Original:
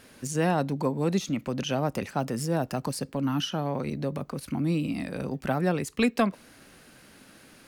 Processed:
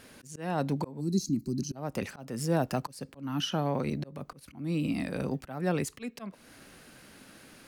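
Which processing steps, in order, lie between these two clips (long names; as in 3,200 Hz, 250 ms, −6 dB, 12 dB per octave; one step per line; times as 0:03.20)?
volume swells 343 ms
gain on a spectral selection 0:01.00–0:01.76, 390–3,900 Hz −24 dB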